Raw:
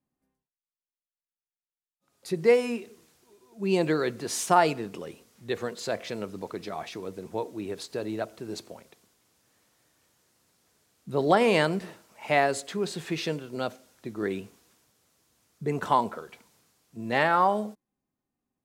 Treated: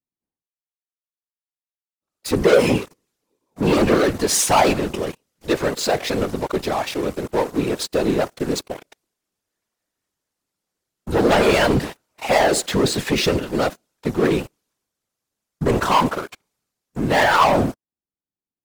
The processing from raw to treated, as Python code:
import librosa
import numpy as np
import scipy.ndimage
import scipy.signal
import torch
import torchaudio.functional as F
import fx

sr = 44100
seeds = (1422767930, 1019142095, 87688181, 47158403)

y = fx.leveller(x, sr, passes=5)
y = fx.whisperise(y, sr, seeds[0])
y = y * 10.0 ** (-4.0 / 20.0)